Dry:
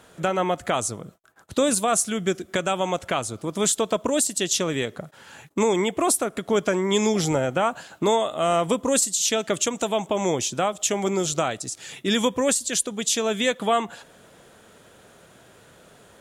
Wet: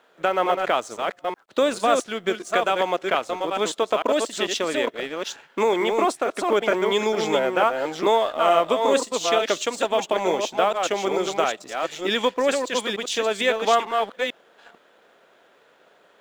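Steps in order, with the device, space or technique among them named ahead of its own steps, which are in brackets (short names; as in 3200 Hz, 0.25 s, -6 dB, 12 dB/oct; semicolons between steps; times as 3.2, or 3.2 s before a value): reverse delay 0.447 s, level -4 dB; HPF 160 Hz 6 dB/oct; phone line with mismatched companding (BPF 350–3500 Hz; G.711 law mismatch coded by A); gain +3.5 dB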